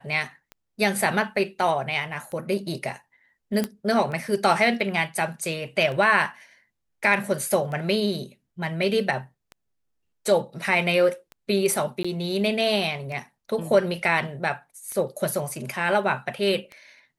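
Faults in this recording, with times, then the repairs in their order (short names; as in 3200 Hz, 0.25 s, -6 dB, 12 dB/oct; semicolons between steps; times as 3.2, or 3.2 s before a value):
tick 33 1/3 rpm -24 dBFS
3.64 pop -12 dBFS
12.03–12.04 gap 15 ms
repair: de-click; interpolate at 12.03, 15 ms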